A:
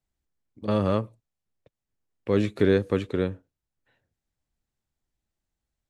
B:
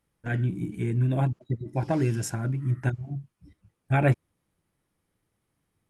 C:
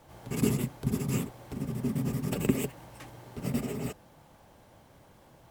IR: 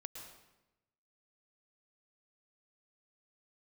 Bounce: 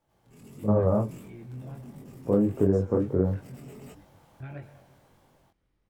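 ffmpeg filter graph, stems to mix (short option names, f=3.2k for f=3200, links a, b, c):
-filter_complex "[0:a]lowpass=f=1k:w=0.5412,lowpass=f=1k:w=1.3066,flanger=delay=19:depth=4:speed=2.9,volume=0.5dB[a];[1:a]lowpass=5.4k,acompressor=threshold=-32dB:ratio=5,adelay=500,volume=-10.5dB,asplit=2[b][c];[c]volume=-10dB[d];[2:a]dynaudnorm=f=450:g=5:m=6dB,volume=-15.5dB[e];[b][e]amix=inputs=2:normalize=0,asoftclip=type=tanh:threshold=-37dB,alimiter=level_in=23.5dB:limit=-24dB:level=0:latency=1:release=11,volume=-23.5dB,volume=0dB[f];[3:a]atrim=start_sample=2205[g];[d][g]afir=irnorm=-1:irlink=0[h];[a][f][h]amix=inputs=3:normalize=0,dynaudnorm=f=110:g=9:m=11dB,flanger=delay=20:depth=4.1:speed=1.5,acompressor=threshold=-18dB:ratio=6"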